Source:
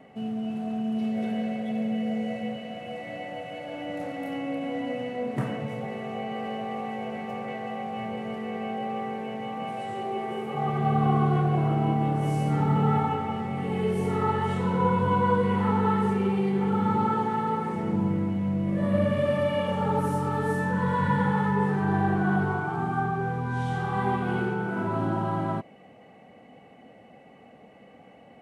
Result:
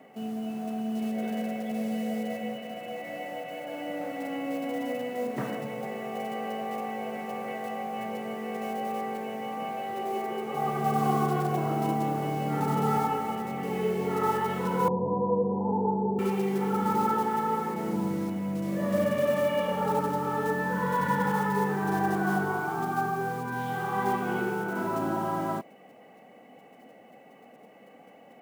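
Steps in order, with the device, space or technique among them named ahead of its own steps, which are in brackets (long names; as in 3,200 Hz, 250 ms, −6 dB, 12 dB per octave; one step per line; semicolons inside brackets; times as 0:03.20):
early digital voice recorder (band-pass filter 220–3,500 Hz; one scale factor per block 5 bits)
0:14.88–0:16.19: Butterworth low-pass 920 Hz 72 dB per octave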